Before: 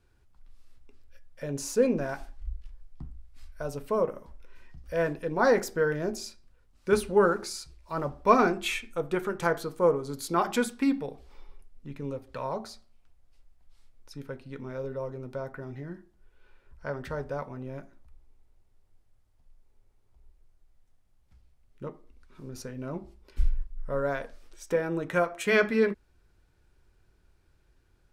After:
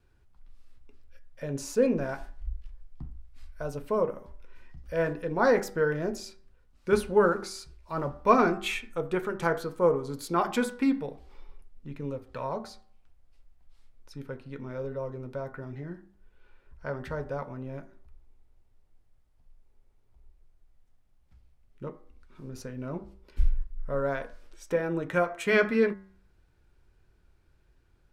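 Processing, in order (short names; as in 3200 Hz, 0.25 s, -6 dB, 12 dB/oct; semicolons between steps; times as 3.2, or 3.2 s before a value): tone controls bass +1 dB, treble -4 dB; de-hum 97.4 Hz, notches 22; wow and flutter 23 cents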